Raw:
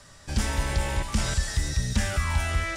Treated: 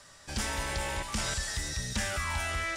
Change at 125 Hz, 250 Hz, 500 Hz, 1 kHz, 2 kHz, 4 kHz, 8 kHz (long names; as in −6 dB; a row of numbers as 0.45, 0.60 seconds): −10.5, −7.5, −3.5, −2.0, −1.5, −1.5, −1.5 decibels